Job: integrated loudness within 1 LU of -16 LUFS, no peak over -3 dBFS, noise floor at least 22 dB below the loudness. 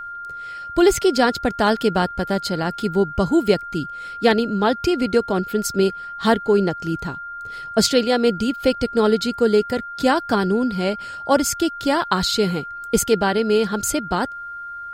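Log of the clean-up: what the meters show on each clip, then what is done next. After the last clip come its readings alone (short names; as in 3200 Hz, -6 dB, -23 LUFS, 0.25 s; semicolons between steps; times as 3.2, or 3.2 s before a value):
steady tone 1400 Hz; tone level -30 dBFS; loudness -20.0 LUFS; peak -3.0 dBFS; loudness target -16.0 LUFS
-> notch 1400 Hz, Q 30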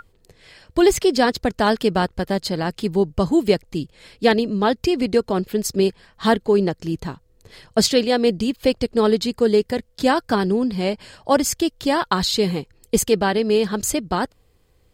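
steady tone none; loudness -20.5 LUFS; peak -3.0 dBFS; loudness target -16.0 LUFS
-> gain +4.5 dB; limiter -3 dBFS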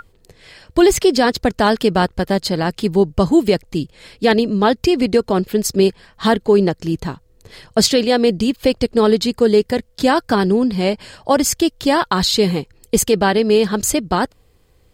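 loudness -16.5 LUFS; peak -3.0 dBFS; noise floor -55 dBFS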